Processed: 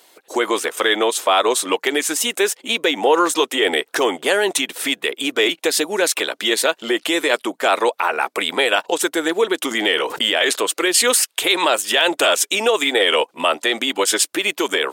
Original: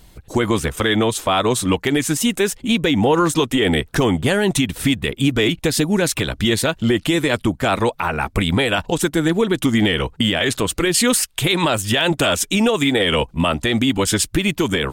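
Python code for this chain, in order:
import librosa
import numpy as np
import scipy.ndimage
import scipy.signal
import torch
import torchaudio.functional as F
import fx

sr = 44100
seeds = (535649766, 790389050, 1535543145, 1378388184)

y = scipy.signal.sosfilt(scipy.signal.butter(4, 380.0, 'highpass', fs=sr, output='sos'), x)
y = fx.sustainer(y, sr, db_per_s=64.0, at=(9.7, 10.54), fade=0.02)
y = y * 10.0 ** (2.5 / 20.0)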